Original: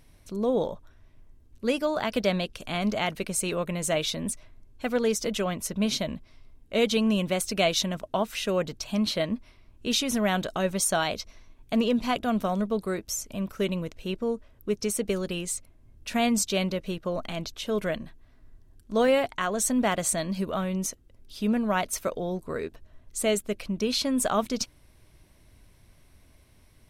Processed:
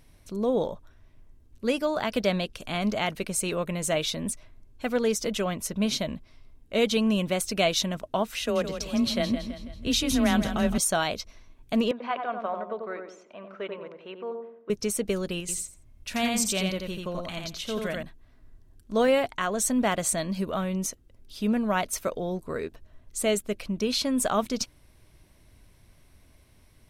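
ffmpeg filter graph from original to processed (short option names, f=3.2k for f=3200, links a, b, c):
-filter_complex "[0:a]asettb=1/sr,asplit=3[a][b][c];[a]atrim=end=8.394[d];[b]atrim=start=8.39:end=10.78,asetpts=PTS-STARTPTS,afade=t=in:d=0.004:c=qsin,afade=t=out:st=2.386:d=0.004:c=qsin,asubboost=boost=5.5:cutoff=200,afreqshift=21,aecho=1:1:164|328|492|656|820:0.335|0.161|0.0772|0.037|0.0178,atrim=end_sample=105399[e];[c]atrim=start=10.776[f];[d][e]acrossfade=d=0.004:c1=hsin:c2=qsin[g];[g][f]acrossfade=d=0.004:c1=qsin:c2=hsin,asettb=1/sr,asplit=3[h][i][j];[h]atrim=end=11.914[k];[i]atrim=start=11.91:end=14.7,asetpts=PTS-STARTPTS,afade=t=in:d=0.004:c=qsin,afade=t=out:st=2.786:d=0.004:c=qsin,highpass=610,lowpass=2.3k,aemphasis=mode=reproduction:type=50fm,asplit=2[l][m];[m]adelay=91,lowpass=f=950:p=1,volume=-3dB,asplit=2[n][o];[o]adelay=91,lowpass=f=950:p=1,volume=0.47,asplit=2[p][q];[q]adelay=91,lowpass=f=950:p=1,volume=0.47,asplit=2[r][s];[s]adelay=91,lowpass=f=950:p=1,volume=0.47,asplit=2[t][u];[u]adelay=91,lowpass=f=950:p=1,volume=0.47,asplit=2[v][w];[w]adelay=91,lowpass=f=950:p=1,volume=0.47[x];[l][n][p][r][t][v][x]amix=inputs=7:normalize=0,atrim=end_sample=123039[y];[j]atrim=start=14.696[z];[k][y]acrossfade=d=0.004:c1=hsin:c2=qsin[aa];[aa][z]acrossfade=d=0.004:c1=qsin:c2=hsin,asettb=1/sr,asplit=3[ab][ac][ad];[ab]atrim=end=15.404[ae];[ac]atrim=start=15.4:end=18.03,asetpts=PTS-STARTPTS,afade=t=in:d=0.004:c=qsin,afade=t=out:st=2.626:d=0.004:c=qsin,equalizer=f=420:w=0.45:g=-5,aecho=1:1:86|172|258:0.708|0.113|0.0181,atrim=end_sample=115983[af];[ad]atrim=start=18.026[ag];[ae][af]acrossfade=d=0.004:c1=hsin:c2=qsin[ah];[ah][ag]acrossfade=d=0.004:c1=qsin:c2=hsin"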